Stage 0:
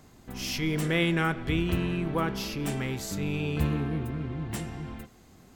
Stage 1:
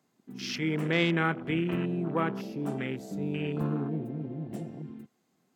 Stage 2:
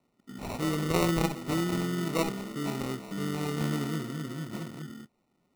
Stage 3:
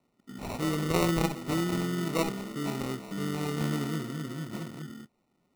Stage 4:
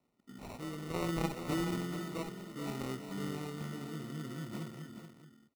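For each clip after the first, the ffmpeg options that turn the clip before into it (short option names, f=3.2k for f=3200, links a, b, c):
-af "highpass=f=150:w=0.5412,highpass=f=150:w=1.3066,afwtdn=0.0158"
-af "acrusher=samples=27:mix=1:aa=0.000001"
-af anull
-filter_complex "[0:a]acrossover=split=2000[a][b];[b]asoftclip=type=tanh:threshold=-24dB[c];[a][c]amix=inputs=2:normalize=0,tremolo=f=0.67:d=0.59,aecho=1:1:427:0.355,volume=-5dB"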